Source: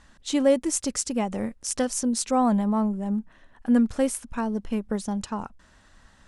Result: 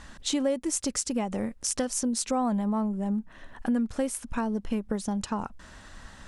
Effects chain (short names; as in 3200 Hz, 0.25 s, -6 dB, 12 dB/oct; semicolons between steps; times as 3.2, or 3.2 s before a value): compressor 3:1, threshold -38 dBFS, peak gain reduction 17 dB; gain +8.5 dB